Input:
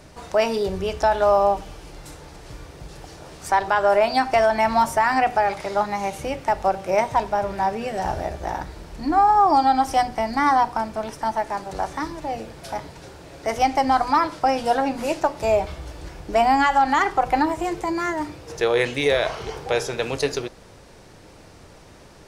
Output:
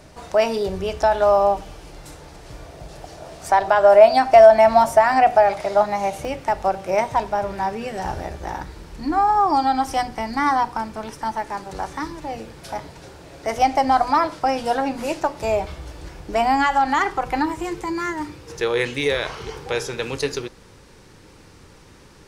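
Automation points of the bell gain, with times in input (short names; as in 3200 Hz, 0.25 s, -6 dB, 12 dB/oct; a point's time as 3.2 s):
bell 660 Hz 0.35 oct
+2.5 dB
from 2.54 s +10.5 dB
from 6.25 s 0 dB
from 7.58 s -6.5 dB
from 12.69 s 0 dB
from 13.58 s +6 dB
from 14.34 s -2.5 dB
from 17.15 s -11.5 dB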